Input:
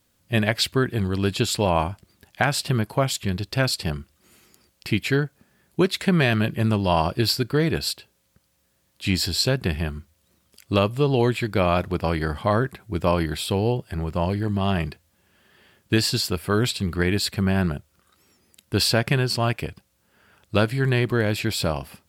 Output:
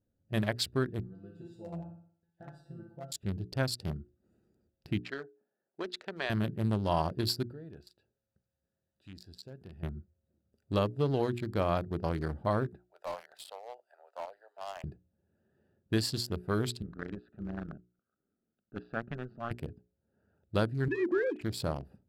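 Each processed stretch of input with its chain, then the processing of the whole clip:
1.00–3.12 s: band-stop 2.4 kHz, Q 6.3 + feedback comb 170 Hz, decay 0.28 s, mix 100% + flutter echo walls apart 10.2 m, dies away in 0.55 s
5.00–6.30 s: band-pass 590–5800 Hz + level-controlled noise filter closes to 1.7 kHz, open at -21.5 dBFS
7.51–9.83 s: tilt shelf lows -5.5 dB, about 830 Hz + compression 2:1, threshold -41 dBFS
12.77–14.84 s: steep high-pass 590 Hz 48 dB/octave + hard clipper -22.5 dBFS
16.82–19.51 s: block-companded coder 5-bit + cabinet simulation 210–2700 Hz, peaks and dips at 340 Hz -7 dB, 510 Hz -9 dB, 920 Hz -9 dB, 1.3 kHz +7 dB, 2.2 kHz -9 dB + AM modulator 120 Hz, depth 50%
20.88–21.41 s: formants replaced by sine waves + comb 5.8 ms, depth 30%
whole clip: local Wiener filter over 41 samples; peaking EQ 2.5 kHz -7.5 dB 0.68 oct; hum notches 60/120/180/240/300/360/420 Hz; trim -8 dB

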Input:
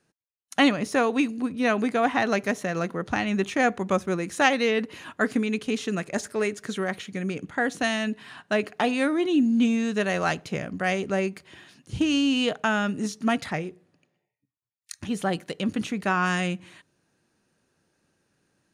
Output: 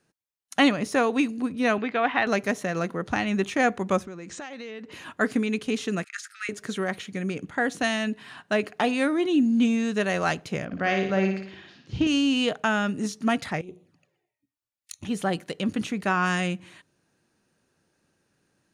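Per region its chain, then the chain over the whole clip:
1.78–2.27 s: low-pass 3.4 kHz 24 dB/octave + tilt EQ +2.5 dB/octave
4.05–4.92 s: steep low-pass 8.3 kHz 72 dB/octave + compression 8:1, threshold -35 dBFS
6.04–6.49 s: brick-wall FIR high-pass 1.2 kHz + treble shelf 7.4 kHz -9.5 dB
10.65–12.07 s: low-pass 5.3 kHz 24 dB/octave + flutter echo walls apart 9.8 m, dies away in 0.62 s
13.61–15.05 s: compressor with a negative ratio -37 dBFS, ratio -0.5 + touch-sensitive flanger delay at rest 3.6 ms, full sweep at -42.5 dBFS
whole clip: none

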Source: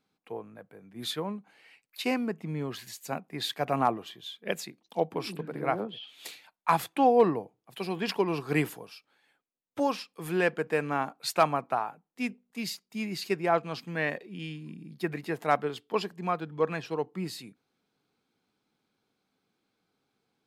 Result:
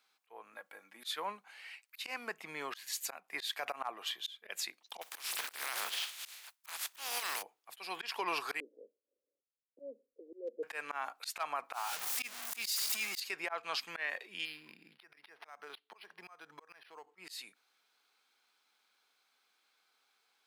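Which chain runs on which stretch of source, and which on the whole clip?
0.53–1.04 s: comb 3.6 ms, depth 58% + compression 4:1, threshold -42 dBFS
5.01–7.41 s: spectral contrast reduction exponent 0.33 + compression 5:1, threshold -34 dBFS
8.60–10.63 s: Chebyshev band-pass 220–570 Hz, order 5 + hard clipper -19.5 dBFS
11.73–13.20 s: jump at every zero crossing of -36.5 dBFS + treble shelf 3.6 kHz +10 dB
14.45–17.18 s: compression 8:1, threshold -38 dBFS + decimation joined by straight lines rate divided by 6×
whole clip: high-pass 1.1 kHz 12 dB/octave; slow attack 264 ms; peak limiter -33 dBFS; trim +7.5 dB

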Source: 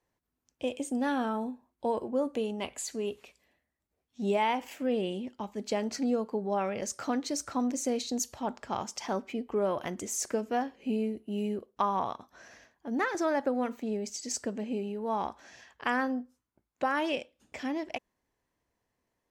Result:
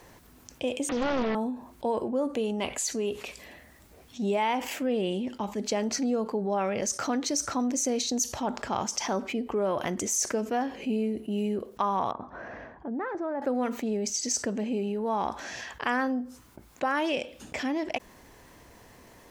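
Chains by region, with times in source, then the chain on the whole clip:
0.89–1.35 s: one-bit delta coder 16 kbps, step -32 dBFS + high-pass 120 Hz + loudspeaker Doppler distortion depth 0.94 ms
12.11–13.42 s: low-pass 1.2 kHz + compression 1.5:1, threshold -51 dBFS
whole clip: dynamic bell 6 kHz, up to +7 dB, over -55 dBFS, Q 5.6; level flattener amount 50%

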